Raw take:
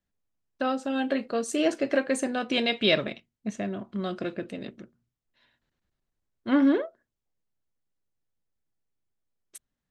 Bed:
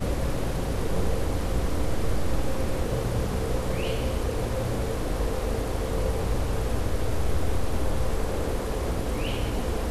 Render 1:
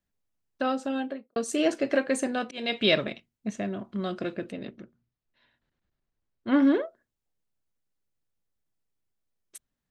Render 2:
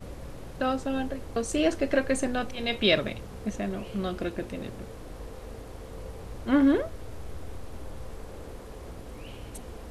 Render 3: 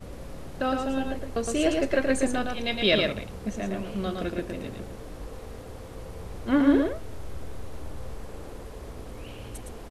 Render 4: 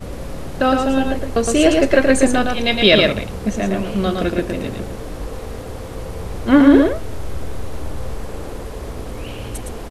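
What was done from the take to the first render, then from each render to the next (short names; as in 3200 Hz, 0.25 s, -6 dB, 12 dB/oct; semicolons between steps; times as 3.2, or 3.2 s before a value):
0.82–1.36 studio fade out; 2.32–2.83 auto swell 0.248 s; 4.52–6.54 air absorption 100 m
add bed -14 dB
echo 0.112 s -4 dB
gain +11 dB; limiter -1 dBFS, peak gain reduction 2.5 dB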